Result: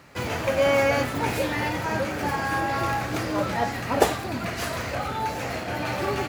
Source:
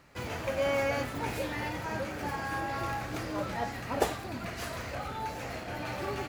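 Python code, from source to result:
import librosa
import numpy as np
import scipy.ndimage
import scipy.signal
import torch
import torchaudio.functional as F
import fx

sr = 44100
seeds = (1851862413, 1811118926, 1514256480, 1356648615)

y = scipy.signal.sosfilt(scipy.signal.butter(2, 68.0, 'highpass', fs=sr, output='sos'), x)
y = y * librosa.db_to_amplitude(8.5)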